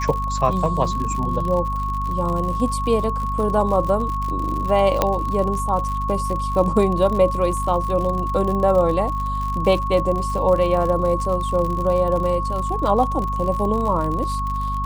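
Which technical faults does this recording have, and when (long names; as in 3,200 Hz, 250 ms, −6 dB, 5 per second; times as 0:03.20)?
surface crackle 69 per second −26 dBFS
mains hum 50 Hz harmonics 5 −26 dBFS
whistle 1,100 Hz −24 dBFS
0:05.02: click −3 dBFS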